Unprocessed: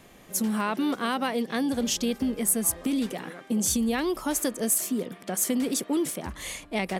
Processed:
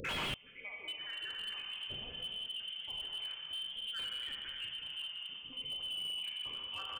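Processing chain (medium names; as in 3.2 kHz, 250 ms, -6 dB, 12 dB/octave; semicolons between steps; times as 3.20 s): random holes in the spectrogram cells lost 58%; simulated room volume 140 m³, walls hard, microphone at 0.6 m; in parallel at -1 dB: peak limiter -20 dBFS, peak gain reduction 9 dB; on the sum: hum notches 60/120/180/240 Hz; on a send: delay 81 ms -12 dB; on the sum: inverted gate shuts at -26 dBFS, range -37 dB; frequency inversion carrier 3.3 kHz; slew-rate limiter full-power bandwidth 5.2 Hz; trim +17.5 dB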